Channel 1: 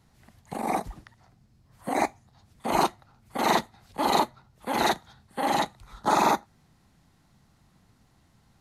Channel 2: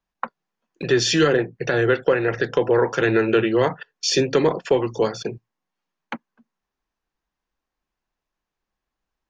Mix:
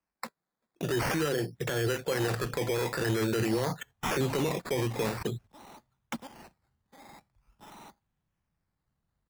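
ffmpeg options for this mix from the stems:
ffmpeg -i stem1.wav -i stem2.wav -filter_complex "[0:a]asoftclip=type=hard:threshold=-21dB,adelay=1550,volume=-14.5dB[link_01];[1:a]highpass=55,alimiter=limit=-17dB:level=0:latency=1:release=22,volume=-4dB,asplit=2[link_02][link_03];[link_03]apad=whole_len=447913[link_04];[link_01][link_04]sidechaingate=range=-11dB:threshold=-49dB:ratio=16:detection=peak[link_05];[link_05][link_02]amix=inputs=2:normalize=0,asubboost=boost=2:cutoff=210,acrusher=samples=12:mix=1:aa=0.000001:lfo=1:lforange=7.2:lforate=0.47" out.wav

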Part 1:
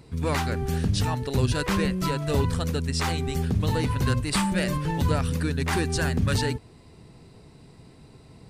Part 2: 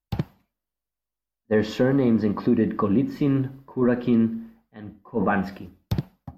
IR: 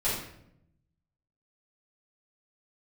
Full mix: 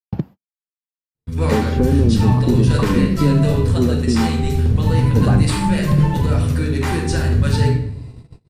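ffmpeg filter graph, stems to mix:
-filter_complex "[0:a]equalizer=frequency=87:width=0.41:gain=5,alimiter=limit=-15.5dB:level=0:latency=1:release=49,adelay=1150,volume=-2dB,asplit=2[link_01][link_02];[link_02]volume=-4.5dB[link_03];[1:a]equalizer=frequency=220:width_type=o:width=2.9:gain=12,acompressor=threshold=-10dB:ratio=6,volume=-4.5dB[link_04];[2:a]atrim=start_sample=2205[link_05];[link_03][link_05]afir=irnorm=-1:irlink=0[link_06];[link_01][link_04][link_06]amix=inputs=3:normalize=0,agate=range=-46dB:threshold=-34dB:ratio=16:detection=peak"

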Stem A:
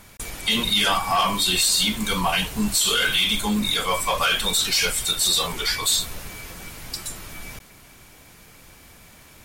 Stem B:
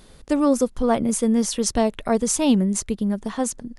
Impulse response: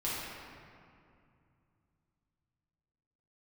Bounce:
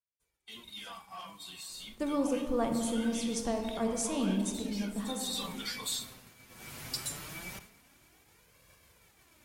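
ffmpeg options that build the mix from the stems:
-filter_complex "[0:a]highpass=57,flanger=delay=1.8:depth=6.4:regen=24:speed=0.23:shape=sinusoidal,volume=-2dB,afade=type=in:start_time=4.98:duration=0.47:silence=0.281838,afade=type=in:start_time=6.46:duration=0.34:silence=0.334965,asplit=3[link_01][link_02][link_03];[link_02]volume=-18.5dB[link_04];[1:a]adelay=1700,volume=-12dB,asplit=2[link_05][link_06];[link_06]volume=-9dB[link_07];[link_03]apad=whole_len=241961[link_08];[link_05][link_08]sidechaincompress=threshold=-49dB:ratio=8:attack=16:release=452[link_09];[2:a]atrim=start_sample=2205[link_10];[link_04][link_07]amix=inputs=2:normalize=0[link_11];[link_11][link_10]afir=irnorm=-1:irlink=0[link_12];[link_01][link_09][link_12]amix=inputs=3:normalize=0,agate=range=-33dB:threshold=-46dB:ratio=3:detection=peak"

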